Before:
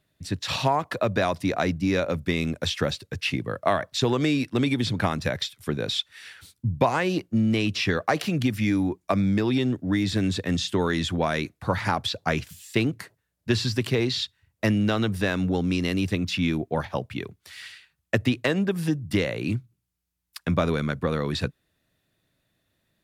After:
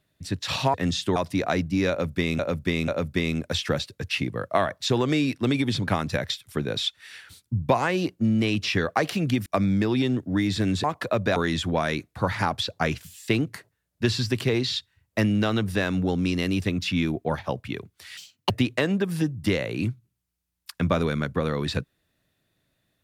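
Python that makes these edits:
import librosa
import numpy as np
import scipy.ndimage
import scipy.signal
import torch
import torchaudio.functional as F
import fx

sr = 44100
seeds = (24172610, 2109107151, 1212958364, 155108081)

y = fx.edit(x, sr, fx.swap(start_s=0.74, length_s=0.52, other_s=10.4, other_length_s=0.42),
    fx.repeat(start_s=2.0, length_s=0.49, count=3),
    fx.cut(start_s=8.58, length_s=0.44),
    fx.speed_span(start_s=17.63, length_s=0.54, speed=1.63), tone=tone)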